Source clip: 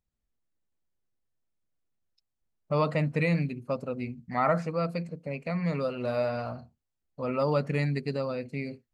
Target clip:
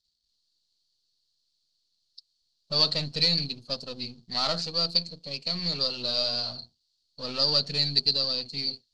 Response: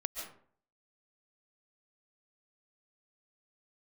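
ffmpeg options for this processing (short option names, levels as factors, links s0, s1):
-af "aeval=exprs='if(lt(val(0),0),0.447*val(0),val(0))':c=same,lowpass=f=4400:t=q:w=7.8,aexciter=amount=11:drive=3.7:freq=3200,volume=0.631"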